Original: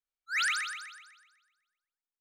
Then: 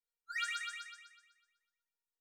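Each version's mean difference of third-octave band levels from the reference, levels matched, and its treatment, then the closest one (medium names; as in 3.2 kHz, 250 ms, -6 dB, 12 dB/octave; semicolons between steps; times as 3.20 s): 2.5 dB: dynamic bell 5.1 kHz, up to -6 dB, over -51 dBFS, Q 3.6; compression 2.5:1, threshold -33 dBFS, peak gain reduction 5 dB; feedback comb 470 Hz, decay 0.18 s, harmonics all, mix 100%; trim +9.5 dB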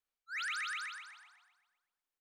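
4.0 dB: tone controls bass -4 dB, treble -5 dB; reverse; compression 6:1, threshold -41 dBFS, peak gain reduction 13 dB; reverse; frequency-shifting echo 150 ms, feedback 59%, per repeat -130 Hz, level -23 dB; trim +4 dB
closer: first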